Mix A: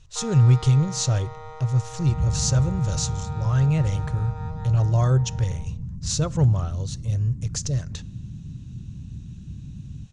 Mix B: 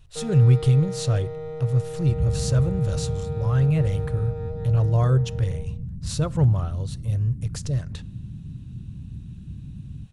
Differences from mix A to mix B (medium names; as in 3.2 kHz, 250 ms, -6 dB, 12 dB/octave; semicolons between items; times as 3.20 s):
first sound: remove resonant high-pass 1 kHz, resonance Q 6.5; master: remove resonant low-pass 6.5 kHz, resonance Q 3.7